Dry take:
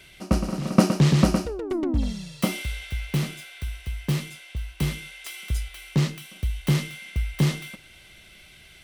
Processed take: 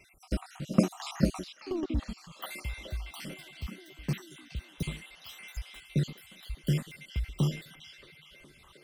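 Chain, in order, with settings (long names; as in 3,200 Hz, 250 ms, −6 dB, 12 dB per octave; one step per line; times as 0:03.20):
time-frequency cells dropped at random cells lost 58%
0:04.57–0:05.69: noise in a band 450–1,900 Hz −58 dBFS
echo through a band-pass that steps 414 ms, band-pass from 3,700 Hz, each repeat −0.7 octaves, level −5 dB
level −6 dB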